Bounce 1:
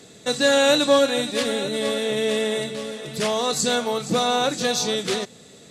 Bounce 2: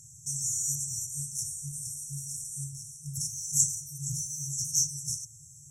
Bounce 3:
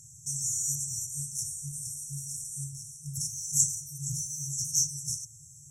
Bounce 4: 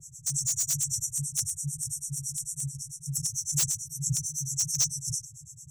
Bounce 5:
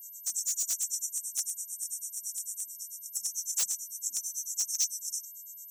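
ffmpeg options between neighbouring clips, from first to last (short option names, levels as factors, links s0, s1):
-af "afftfilt=real='re*(1-between(b*sr/4096,160,5400))':imag='im*(1-between(b*sr/4096,160,5400))':win_size=4096:overlap=0.75,volume=1.33"
-af anull
-filter_complex "[0:a]acrossover=split=580[s0][s1];[s0]aeval=exprs='val(0)*(1-1/2+1/2*cos(2*PI*9*n/s))':c=same[s2];[s1]aeval=exprs='val(0)*(1-1/2-1/2*cos(2*PI*9*n/s))':c=same[s3];[s2][s3]amix=inputs=2:normalize=0,acrossover=split=230|4500[s4][s5][s6];[s6]aeval=exprs='0.0398*(abs(mod(val(0)/0.0398+3,4)-2)-1)':c=same[s7];[s4][s5][s7]amix=inputs=3:normalize=0,volume=2.51"
-af "aeval=exprs='val(0)+0.00794*sin(2*PI*13000*n/s)':c=same,afftfilt=real='re*gte(b*sr/1024,200*pow(2500/200,0.5+0.5*sin(2*PI*2.1*pts/sr)))':imag='im*gte(b*sr/1024,200*pow(2500/200,0.5+0.5*sin(2*PI*2.1*pts/sr)))':win_size=1024:overlap=0.75,volume=0.708"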